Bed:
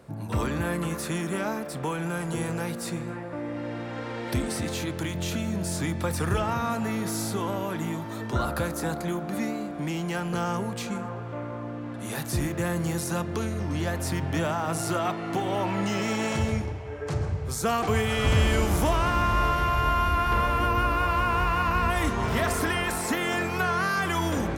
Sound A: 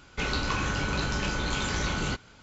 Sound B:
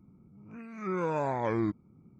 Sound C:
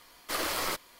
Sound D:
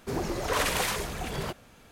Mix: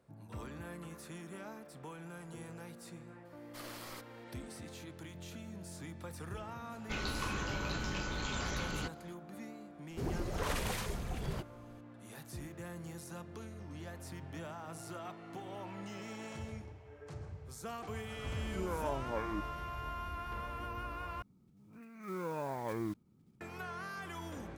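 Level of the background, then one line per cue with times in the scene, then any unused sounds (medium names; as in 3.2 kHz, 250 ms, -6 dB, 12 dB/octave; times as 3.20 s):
bed -18 dB
3.25 s: add C -17 dB
6.72 s: add A -9 dB
9.90 s: add D -11.5 dB + bass shelf 240 Hz +11 dB
17.69 s: add B -5.5 dB + lamp-driven phase shifter 2.1 Hz
21.22 s: replace with B -8.5 dB + block-companded coder 5-bit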